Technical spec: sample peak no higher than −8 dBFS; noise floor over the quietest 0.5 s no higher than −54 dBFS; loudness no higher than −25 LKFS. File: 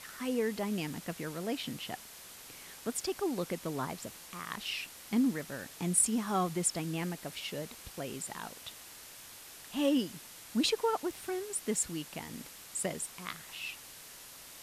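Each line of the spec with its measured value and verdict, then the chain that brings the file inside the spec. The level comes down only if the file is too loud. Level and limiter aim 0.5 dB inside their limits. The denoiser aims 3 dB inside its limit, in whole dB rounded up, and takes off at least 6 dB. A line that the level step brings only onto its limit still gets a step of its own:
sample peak −15.0 dBFS: in spec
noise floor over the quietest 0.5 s −51 dBFS: out of spec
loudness −35.0 LKFS: in spec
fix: broadband denoise 6 dB, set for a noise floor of −51 dBFS

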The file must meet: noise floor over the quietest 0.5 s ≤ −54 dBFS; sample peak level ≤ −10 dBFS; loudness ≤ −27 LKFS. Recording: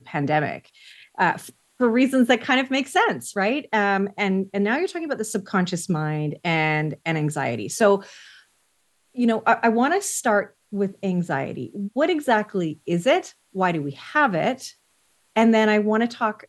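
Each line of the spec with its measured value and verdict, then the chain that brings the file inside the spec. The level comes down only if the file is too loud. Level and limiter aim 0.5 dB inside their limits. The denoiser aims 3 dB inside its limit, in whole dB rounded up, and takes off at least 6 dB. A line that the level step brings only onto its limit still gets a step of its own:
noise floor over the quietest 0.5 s −66 dBFS: in spec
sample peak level −5.0 dBFS: out of spec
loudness −22.5 LKFS: out of spec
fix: level −5 dB
brickwall limiter −10.5 dBFS

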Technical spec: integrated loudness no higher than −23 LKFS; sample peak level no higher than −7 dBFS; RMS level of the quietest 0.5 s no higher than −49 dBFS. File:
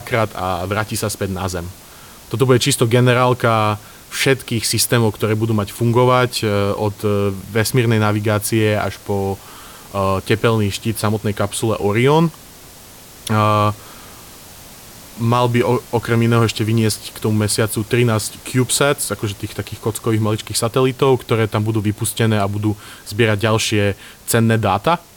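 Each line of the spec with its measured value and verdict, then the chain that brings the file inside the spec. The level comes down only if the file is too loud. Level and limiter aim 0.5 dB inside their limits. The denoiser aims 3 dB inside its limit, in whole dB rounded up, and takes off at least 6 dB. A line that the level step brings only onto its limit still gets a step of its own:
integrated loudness −17.5 LKFS: out of spec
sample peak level −3.0 dBFS: out of spec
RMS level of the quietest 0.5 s −40 dBFS: out of spec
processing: broadband denoise 6 dB, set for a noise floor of −40 dBFS
level −6 dB

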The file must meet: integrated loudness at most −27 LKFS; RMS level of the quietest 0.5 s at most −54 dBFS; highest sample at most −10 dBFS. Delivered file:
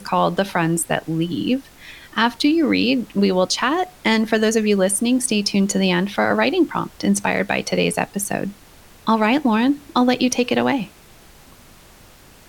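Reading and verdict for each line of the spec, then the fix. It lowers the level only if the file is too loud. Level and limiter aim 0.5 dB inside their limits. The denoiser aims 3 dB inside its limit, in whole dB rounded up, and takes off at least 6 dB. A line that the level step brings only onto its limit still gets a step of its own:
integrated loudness −19.5 LKFS: out of spec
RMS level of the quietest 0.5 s −47 dBFS: out of spec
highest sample −5.5 dBFS: out of spec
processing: level −8 dB

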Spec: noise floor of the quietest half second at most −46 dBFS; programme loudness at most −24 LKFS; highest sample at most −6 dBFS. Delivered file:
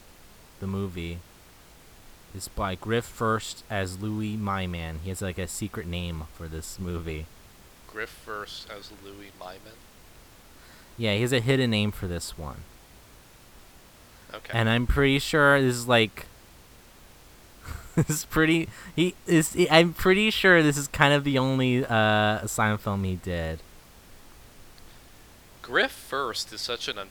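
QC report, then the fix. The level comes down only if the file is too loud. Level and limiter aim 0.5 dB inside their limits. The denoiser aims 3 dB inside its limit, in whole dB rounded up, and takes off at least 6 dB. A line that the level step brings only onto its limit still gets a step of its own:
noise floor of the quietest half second −52 dBFS: in spec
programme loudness −25.0 LKFS: in spec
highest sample −2.0 dBFS: out of spec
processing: brickwall limiter −6.5 dBFS

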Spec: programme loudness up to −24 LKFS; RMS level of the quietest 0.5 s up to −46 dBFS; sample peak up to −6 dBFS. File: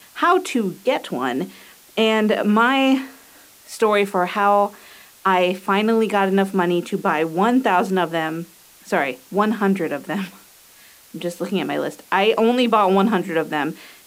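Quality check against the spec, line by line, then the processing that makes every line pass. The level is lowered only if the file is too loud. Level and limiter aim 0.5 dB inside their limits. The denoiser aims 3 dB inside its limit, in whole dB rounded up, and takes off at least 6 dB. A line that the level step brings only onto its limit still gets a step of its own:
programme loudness −19.5 LKFS: out of spec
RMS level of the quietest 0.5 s −48 dBFS: in spec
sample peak −5.0 dBFS: out of spec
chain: level −5 dB

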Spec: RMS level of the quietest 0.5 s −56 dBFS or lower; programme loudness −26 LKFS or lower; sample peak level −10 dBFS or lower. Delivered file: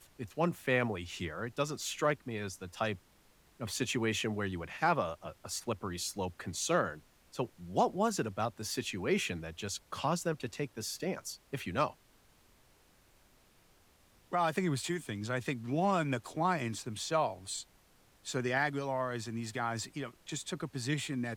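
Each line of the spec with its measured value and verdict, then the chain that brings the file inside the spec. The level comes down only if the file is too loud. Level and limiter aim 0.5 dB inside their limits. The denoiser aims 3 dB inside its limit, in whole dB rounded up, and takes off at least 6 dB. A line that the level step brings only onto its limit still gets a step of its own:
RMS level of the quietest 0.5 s −65 dBFS: in spec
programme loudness −35.0 LKFS: in spec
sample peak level −15.5 dBFS: in spec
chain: no processing needed

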